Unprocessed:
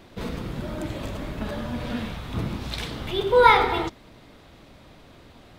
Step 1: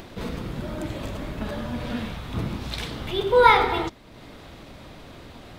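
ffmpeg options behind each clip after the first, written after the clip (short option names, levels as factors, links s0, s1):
-af "acompressor=mode=upward:threshold=0.0178:ratio=2.5"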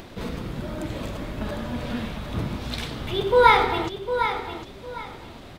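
-af "aecho=1:1:754|1508|2262:0.355|0.0887|0.0222"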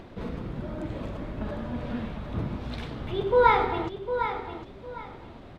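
-af "lowpass=f=1400:p=1,volume=0.75"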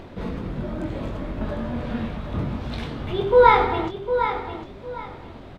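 -filter_complex "[0:a]asplit=2[s0][s1];[s1]adelay=22,volume=0.473[s2];[s0][s2]amix=inputs=2:normalize=0,volume=1.58"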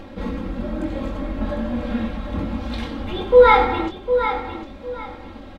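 -af "aecho=1:1:3.7:0.91"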